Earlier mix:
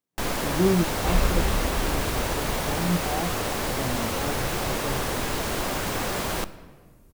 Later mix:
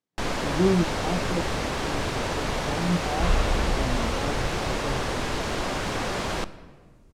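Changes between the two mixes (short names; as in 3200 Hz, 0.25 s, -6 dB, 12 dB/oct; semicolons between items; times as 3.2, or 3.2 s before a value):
second sound: entry +2.15 s; master: add LPF 6400 Hz 12 dB/oct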